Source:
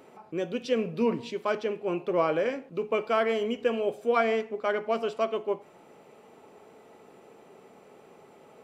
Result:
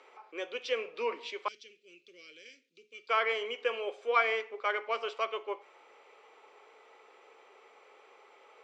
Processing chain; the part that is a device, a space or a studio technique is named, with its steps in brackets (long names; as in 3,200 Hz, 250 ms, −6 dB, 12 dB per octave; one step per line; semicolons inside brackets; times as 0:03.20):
phone speaker on a table (loudspeaker in its box 470–6,600 Hz, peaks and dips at 650 Hz −8 dB, 1,200 Hz +4 dB, 2,200 Hz +7 dB, 3,300 Hz +4 dB)
0:01.48–0:03.09: Chebyshev band-stop filter 150–5,100 Hz, order 2
level −2 dB